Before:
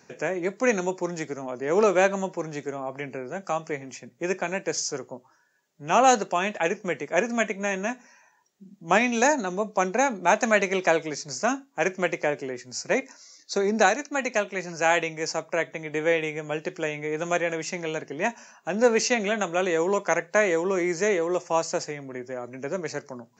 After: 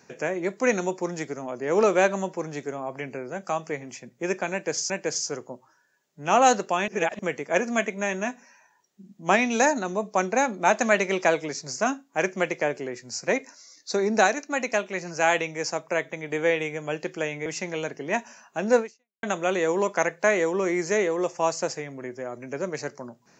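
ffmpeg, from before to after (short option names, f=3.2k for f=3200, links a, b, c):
-filter_complex "[0:a]asplit=6[a][b][c][d][e][f];[a]atrim=end=4.902[g];[b]atrim=start=4.518:end=6.502[h];[c]atrim=start=6.498:end=6.812,asetpts=PTS-STARTPTS,areverse[i];[d]atrim=start=6.808:end=17.082[j];[e]atrim=start=17.568:end=19.34,asetpts=PTS-STARTPTS,afade=t=out:st=1.332:d=0.44:c=exp[k];[f]atrim=start=19.34,asetpts=PTS-STARTPTS,afade=t=in:d=0.004:c=hsin[l];[g][h]acrossfade=d=0.004:c1=hsin:c2=hsin[m];[m][i]acrossfade=d=0.004:c1=hsin:c2=hsin[n];[n][j]acrossfade=d=0.004:c1=hsin:c2=hsin[o];[k][l]concat=n=2:v=0:a=1[p];[o][p]acrossfade=d=0.004:c1=hsin:c2=hsin"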